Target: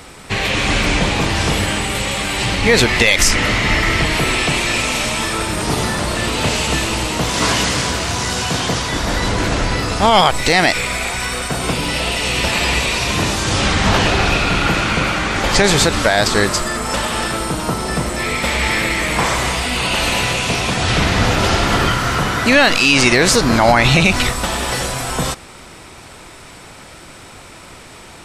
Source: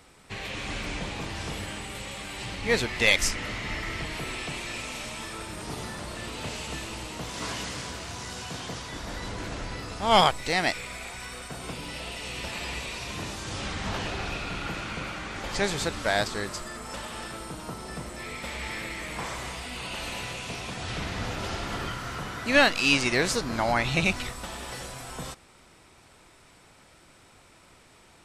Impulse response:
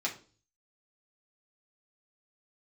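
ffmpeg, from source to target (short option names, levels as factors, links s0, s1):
-af "alimiter=level_in=8.41:limit=0.891:release=50:level=0:latency=1,volume=0.891"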